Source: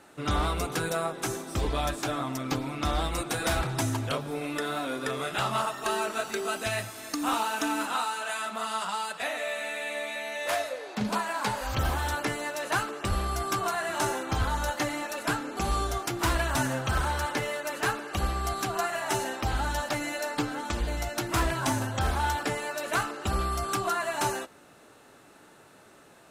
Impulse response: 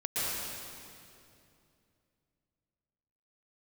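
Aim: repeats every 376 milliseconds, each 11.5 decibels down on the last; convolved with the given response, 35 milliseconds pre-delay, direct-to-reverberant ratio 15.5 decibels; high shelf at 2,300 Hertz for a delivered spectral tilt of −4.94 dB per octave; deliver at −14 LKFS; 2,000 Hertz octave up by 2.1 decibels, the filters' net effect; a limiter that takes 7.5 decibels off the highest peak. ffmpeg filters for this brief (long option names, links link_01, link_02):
-filter_complex "[0:a]equalizer=frequency=2000:width_type=o:gain=7,highshelf=frequency=2300:gain=-8.5,alimiter=limit=-24dB:level=0:latency=1,aecho=1:1:376|752|1128:0.266|0.0718|0.0194,asplit=2[link_01][link_02];[1:a]atrim=start_sample=2205,adelay=35[link_03];[link_02][link_03]afir=irnorm=-1:irlink=0,volume=-23.5dB[link_04];[link_01][link_04]amix=inputs=2:normalize=0,volume=18.5dB"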